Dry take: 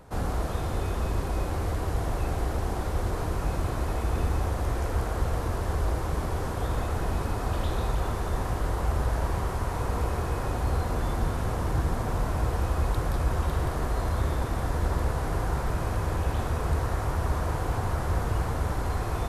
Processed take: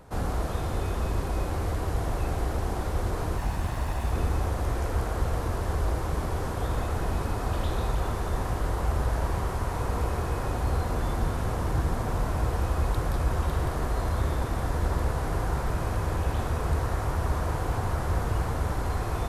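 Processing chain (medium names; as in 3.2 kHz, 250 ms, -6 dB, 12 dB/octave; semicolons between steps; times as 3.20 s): 3.38–4.12 s: comb filter that takes the minimum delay 1.1 ms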